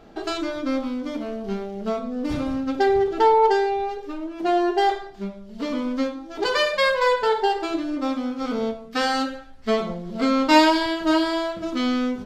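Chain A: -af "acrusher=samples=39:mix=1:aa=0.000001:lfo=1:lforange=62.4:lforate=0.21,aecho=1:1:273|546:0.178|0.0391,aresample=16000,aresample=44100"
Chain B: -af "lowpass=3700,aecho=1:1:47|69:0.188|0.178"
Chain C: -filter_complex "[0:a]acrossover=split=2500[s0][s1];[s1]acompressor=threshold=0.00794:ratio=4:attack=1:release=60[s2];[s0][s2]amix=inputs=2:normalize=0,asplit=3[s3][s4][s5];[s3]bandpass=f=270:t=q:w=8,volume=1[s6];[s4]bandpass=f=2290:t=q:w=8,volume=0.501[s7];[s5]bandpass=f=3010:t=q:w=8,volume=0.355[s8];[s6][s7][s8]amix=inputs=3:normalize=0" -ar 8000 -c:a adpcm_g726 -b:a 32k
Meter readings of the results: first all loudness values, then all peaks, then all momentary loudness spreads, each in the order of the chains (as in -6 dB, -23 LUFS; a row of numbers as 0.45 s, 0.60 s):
-23.0 LUFS, -23.0 LUFS, -32.5 LUFS; -5.5 dBFS, -3.5 dBFS, -16.0 dBFS; 12 LU, 12 LU, 16 LU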